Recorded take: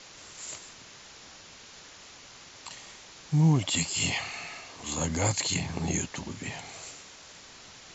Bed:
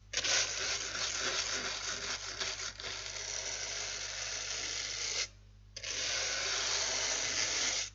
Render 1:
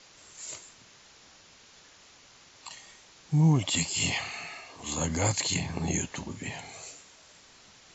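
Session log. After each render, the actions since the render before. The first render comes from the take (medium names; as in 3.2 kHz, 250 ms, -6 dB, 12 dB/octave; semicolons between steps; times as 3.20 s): noise print and reduce 6 dB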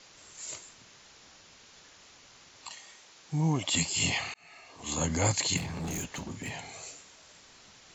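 2.71–3.71 s: bass shelf 180 Hz -11.5 dB; 4.34–4.93 s: fade in; 5.57–6.53 s: hard clipper -32.5 dBFS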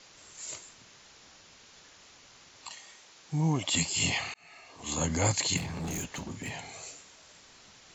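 no audible change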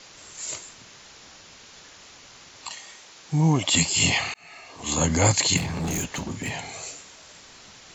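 trim +7.5 dB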